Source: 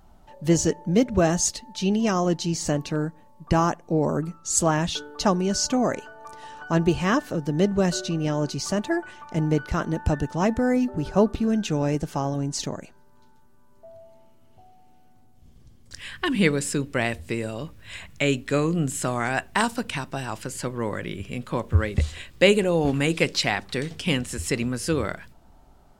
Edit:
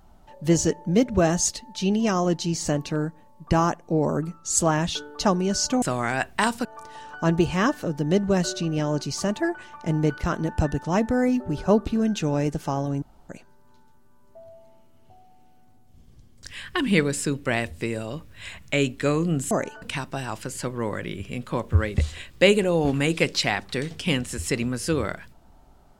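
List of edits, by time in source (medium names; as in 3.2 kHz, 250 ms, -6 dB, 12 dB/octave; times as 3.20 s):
5.82–6.13 s: swap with 18.99–19.82 s
12.50–12.77 s: room tone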